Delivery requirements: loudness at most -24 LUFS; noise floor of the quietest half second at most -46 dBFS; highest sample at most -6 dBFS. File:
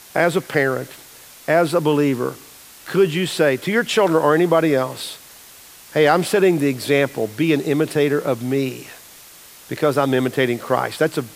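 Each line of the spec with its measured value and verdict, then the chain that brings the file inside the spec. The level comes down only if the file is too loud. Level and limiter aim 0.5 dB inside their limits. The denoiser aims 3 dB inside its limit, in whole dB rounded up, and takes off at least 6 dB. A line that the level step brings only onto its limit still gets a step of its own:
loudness -19.0 LUFS: fail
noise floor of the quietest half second -43 dBFS: fail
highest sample -4.0 dBFS: fail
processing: gain -5.5 dB

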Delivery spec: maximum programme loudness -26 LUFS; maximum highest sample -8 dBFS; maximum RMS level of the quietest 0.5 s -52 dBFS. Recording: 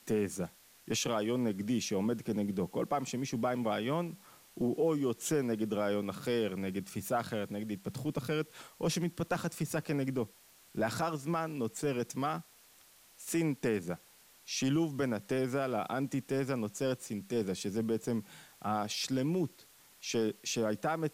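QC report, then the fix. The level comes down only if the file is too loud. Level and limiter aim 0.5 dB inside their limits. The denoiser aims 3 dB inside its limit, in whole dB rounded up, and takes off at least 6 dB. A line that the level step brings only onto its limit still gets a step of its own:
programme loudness -34.5 LUFS: OK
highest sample -21.0 dBFS: OK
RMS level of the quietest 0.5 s -61 dBFS: OK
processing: none

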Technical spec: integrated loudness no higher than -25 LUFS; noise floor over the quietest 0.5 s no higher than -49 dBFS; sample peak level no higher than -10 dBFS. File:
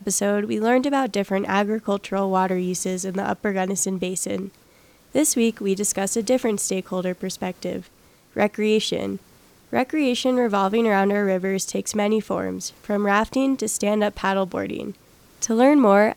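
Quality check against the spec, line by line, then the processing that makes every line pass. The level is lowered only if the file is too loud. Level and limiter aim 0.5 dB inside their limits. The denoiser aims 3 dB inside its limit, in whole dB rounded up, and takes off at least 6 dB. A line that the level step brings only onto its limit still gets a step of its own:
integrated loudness -22.5 LUFS: fail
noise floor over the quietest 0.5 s -54 dBFS: OK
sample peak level -4.5 dBFS: fail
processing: gain -3 dB; limiter -10.5 dBFS

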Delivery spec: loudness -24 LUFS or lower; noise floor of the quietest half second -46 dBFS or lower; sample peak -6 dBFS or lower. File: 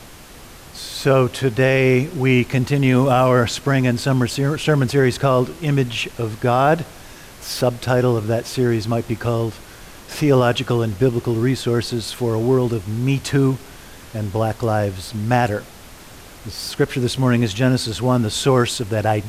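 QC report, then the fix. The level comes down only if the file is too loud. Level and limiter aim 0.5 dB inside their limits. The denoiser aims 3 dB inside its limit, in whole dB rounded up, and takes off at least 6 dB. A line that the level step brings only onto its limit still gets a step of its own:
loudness -19.0 LUFS: fail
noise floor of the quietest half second -40 dBFS: fail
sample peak -4.5 dBFS: fail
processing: denoiser 6 dB, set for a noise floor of -40 dBFS; gain -5.5 dB

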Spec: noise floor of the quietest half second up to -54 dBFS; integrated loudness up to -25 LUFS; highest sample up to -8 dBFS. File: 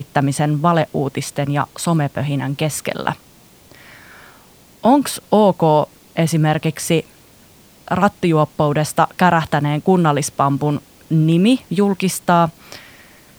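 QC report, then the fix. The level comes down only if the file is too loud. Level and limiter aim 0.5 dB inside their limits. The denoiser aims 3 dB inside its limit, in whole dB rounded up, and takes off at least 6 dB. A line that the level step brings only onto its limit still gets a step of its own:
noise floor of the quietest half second -47 dBFS: fail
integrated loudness -17.5 LUFS: fail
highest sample -1.5 dBFS: fail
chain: gain -8 dB

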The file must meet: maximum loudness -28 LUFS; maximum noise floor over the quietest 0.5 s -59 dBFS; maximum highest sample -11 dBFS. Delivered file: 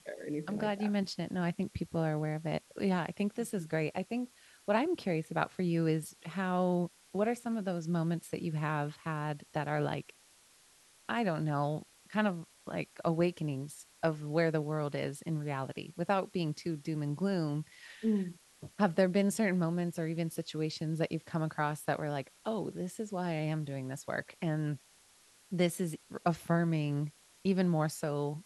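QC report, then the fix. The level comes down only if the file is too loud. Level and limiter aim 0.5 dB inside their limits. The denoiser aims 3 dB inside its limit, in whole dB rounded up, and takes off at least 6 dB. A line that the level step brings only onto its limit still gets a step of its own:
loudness -34.5 LUFS: OK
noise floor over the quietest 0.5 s -63 dBFS: OK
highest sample -14.5 dBFS: OK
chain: none

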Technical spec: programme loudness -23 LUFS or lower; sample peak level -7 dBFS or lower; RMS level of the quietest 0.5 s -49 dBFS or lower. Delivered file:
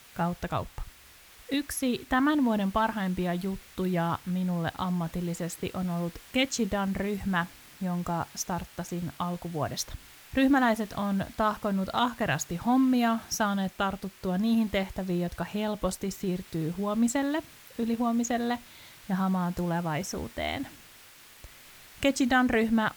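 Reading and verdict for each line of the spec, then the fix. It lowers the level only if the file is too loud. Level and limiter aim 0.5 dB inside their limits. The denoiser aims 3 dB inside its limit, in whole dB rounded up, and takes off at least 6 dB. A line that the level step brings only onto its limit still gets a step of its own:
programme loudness -29.0 LUFS: OK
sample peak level -12.5 dBFS: OK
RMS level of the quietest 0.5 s -53 dBFS: OK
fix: none

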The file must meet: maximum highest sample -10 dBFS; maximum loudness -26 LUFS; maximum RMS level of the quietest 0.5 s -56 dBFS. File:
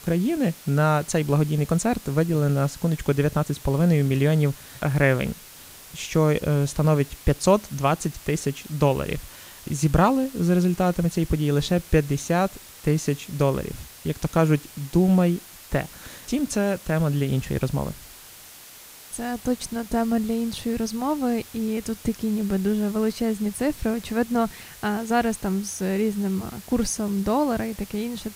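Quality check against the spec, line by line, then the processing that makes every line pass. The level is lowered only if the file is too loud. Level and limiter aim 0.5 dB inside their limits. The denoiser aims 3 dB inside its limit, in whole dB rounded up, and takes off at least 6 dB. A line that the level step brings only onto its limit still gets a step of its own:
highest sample -5.0 dBFS: fail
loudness -24.0 LUFS: fail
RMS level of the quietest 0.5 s -45 dBFS: fail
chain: denoiser 12 dB, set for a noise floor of -45 dBFS; gain -2.5 dB; limiter -10.5 dBFS

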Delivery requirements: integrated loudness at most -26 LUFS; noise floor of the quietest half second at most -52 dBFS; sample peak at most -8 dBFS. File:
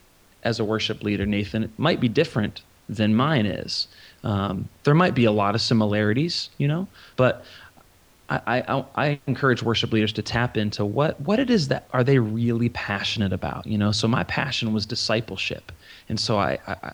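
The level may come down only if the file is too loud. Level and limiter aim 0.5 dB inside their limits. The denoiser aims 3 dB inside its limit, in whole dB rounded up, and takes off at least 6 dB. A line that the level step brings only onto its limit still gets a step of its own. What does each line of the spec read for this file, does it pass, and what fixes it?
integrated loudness -23.5 LUFS: fail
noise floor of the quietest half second -55 dBFS: OK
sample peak -5.0 dBFS: fail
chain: gain -3 dB; limiter -8.5 dBFS

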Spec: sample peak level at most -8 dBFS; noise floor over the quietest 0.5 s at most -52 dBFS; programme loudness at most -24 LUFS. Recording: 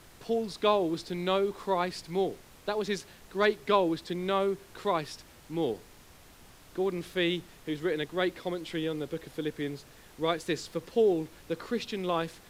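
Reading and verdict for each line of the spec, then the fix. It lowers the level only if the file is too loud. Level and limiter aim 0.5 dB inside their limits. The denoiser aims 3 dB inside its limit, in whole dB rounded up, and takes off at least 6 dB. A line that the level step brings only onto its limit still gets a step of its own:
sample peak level -11.5 dBFS: OK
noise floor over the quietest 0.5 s -54 dBFS: OK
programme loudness -31.0 LUFS: OK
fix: none

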